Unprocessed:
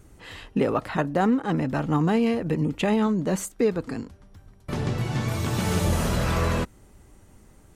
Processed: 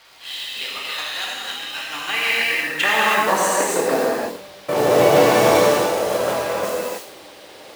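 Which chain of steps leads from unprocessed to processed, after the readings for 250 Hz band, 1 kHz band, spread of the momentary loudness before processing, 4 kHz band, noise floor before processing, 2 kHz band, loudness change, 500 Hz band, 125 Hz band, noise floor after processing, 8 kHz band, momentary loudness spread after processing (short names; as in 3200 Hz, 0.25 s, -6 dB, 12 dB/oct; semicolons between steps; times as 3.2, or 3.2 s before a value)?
-3.0 dB, +10.0 dB, 12 LU, +14.0 dB, -54 dBFS, +13.5 dB, +6.5 dB, +9.5 dB, -8.0 dB, -42 dBFS, +10.5 dB, 14 LU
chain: high shelf 2000 Hz +4.5 dB; high-pass sweep 3500 Hz -> 540 Hz, 1.62–4.15; tilt -3 dB/oct; short-mantissa float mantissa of 2-bit; on a send: thin delay 77 ms, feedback 43%, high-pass 4800 Hz, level -4 dB; on the sum: negative-ratio compressor -28 dBFS, ratio -0.5; HPF 95 Hz; gate with hold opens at -42 dBFS; crackle 360/s -45 dBFS; in parallel at -12 dB: bit-crush 6-bit; on the sum: band noise 470–4700 Hz -57 dBFS; non-linear reverb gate 0.35 s flat, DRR -5.5 dB; gain +4 dB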